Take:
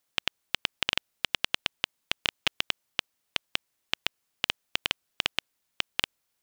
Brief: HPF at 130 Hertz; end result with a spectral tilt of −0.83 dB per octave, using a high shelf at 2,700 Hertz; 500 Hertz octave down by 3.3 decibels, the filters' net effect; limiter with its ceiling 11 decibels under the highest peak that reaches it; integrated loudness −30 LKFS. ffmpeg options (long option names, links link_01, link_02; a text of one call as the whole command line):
ffmpeg -i in.wav -af "highpass=130,equalizer=frequency=500:width_type=o:gain=-4,highshelf=frequency=2700:gain=-4.5,volume=15dB,alimiter=limit=-3dB:level=0:latency=1" out.wav